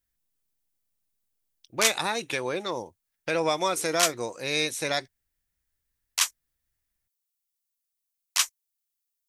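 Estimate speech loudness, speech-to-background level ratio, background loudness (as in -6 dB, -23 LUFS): -28.0 LUFS, -1.0 dB, -27.0 LUFS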